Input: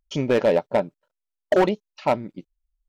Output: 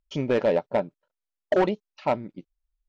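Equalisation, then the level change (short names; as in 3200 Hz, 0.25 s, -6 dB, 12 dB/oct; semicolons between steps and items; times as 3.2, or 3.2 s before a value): air absorption 81 m; -3.0 dB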